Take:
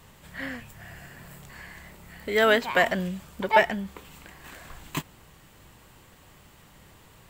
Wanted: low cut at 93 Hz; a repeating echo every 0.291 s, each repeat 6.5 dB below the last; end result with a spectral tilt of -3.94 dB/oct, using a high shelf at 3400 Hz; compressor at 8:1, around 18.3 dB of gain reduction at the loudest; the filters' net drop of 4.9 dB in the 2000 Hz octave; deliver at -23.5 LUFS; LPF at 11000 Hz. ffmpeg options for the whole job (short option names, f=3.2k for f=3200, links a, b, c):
-af "highpass=93,lowpass=11k,equalizer=f=2k:t=o:g=-8,highshelf=f=3.4k:g=7.5,acompressor=threshold=-33dB:ratio=8,aecho=1:1:291|582|873|1164|1455|1746:0.473|0.222|0.105|0.0491|0.0231|0.0109,volume=16.5dB"